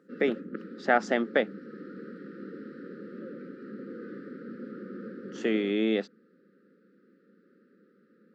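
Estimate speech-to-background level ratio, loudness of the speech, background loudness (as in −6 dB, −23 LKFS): 14.0 dB, −28.5 LKFS, −42.5 LKFS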